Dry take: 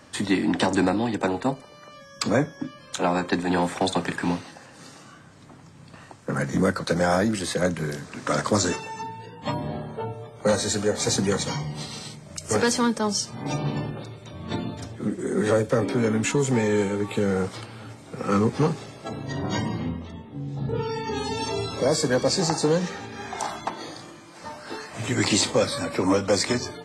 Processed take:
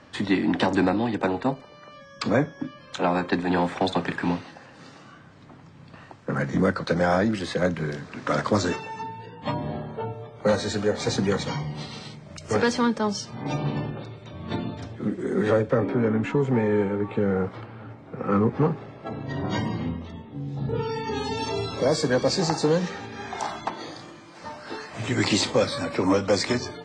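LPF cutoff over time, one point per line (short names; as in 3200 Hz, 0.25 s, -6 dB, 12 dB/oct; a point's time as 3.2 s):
15.4 s 4100 Hz
15.94 s 1800 Hz
18.83 s 1800 Hz
19.29 s 3100 Hz
19.72 s 5700 Hz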